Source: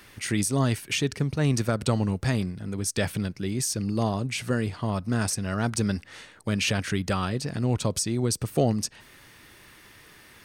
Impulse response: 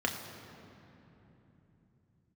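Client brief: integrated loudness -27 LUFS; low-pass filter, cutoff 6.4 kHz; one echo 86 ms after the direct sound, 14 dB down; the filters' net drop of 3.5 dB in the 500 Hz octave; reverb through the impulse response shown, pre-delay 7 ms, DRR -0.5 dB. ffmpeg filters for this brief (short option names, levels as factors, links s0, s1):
-filter_complex "[0:a]lowpass=6400,equalizer=f=500:t=o:g=-4.5,aecho=1:1:86:0.2,asplit=2[s0][s1];[1:a]atrim=start_sample=2205,adelay=7[s2];[s1][s2]afir=irnorm=-1:irlink=0,volume=0.447[s3];[s0][s3]amix=inputs=2:normalize=0,volume=0.708"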